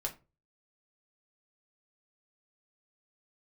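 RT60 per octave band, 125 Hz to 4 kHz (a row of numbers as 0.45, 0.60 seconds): 0.50, 0.35, 0.35, 0.25, 0.25, 0.20 seconds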